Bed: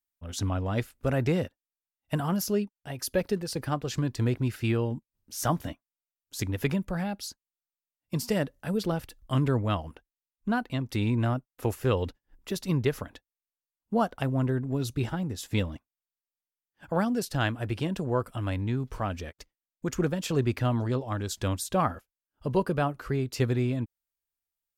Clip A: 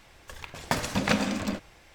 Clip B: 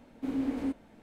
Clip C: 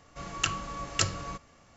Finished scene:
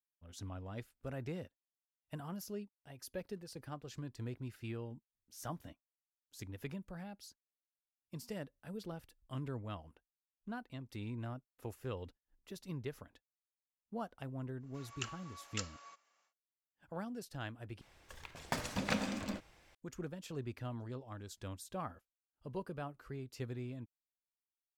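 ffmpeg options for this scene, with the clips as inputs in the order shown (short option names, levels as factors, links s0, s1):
-filter_complex "[0:a]volume=0.15[s0];[3:a]highpass=840[s1];[s0]asplit=2[s2][s3];[s2]atrim=end=17.814[s4];[1:a]atrim=end=1.94,asetpts=PTS-STARTPTS,volume=0.316[s5];[s3]atrim=start=19.746[s6];[s1]atrim=end=1.76,asetpts=PTS-STARTPTS,volume=0.2,afade=t=in:d=0.1,afade=t=out:st=1.66:d=0.1,adelay=14580[s7];[s4][s5]acrossfade=d=0.004:c1=hsin:c2=hsin[s8];[s8][s6]acrossfade=d=0.004:c1=hsin:c2=hsin[s9];[s9][s7]amix=inputs=2:normalize=0"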